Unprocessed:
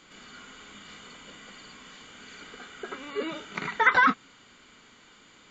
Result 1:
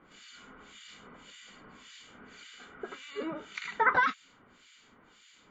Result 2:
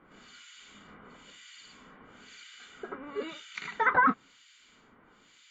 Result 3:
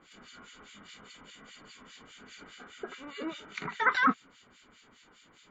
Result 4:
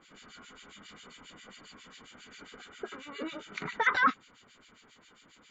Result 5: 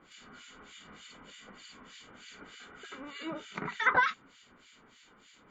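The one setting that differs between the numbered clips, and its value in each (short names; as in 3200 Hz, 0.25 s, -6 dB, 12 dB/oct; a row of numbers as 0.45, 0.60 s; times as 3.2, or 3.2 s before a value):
harmonic tremolo, rate: 1.8, 1, 4.9, 7.4, 3.3 Hz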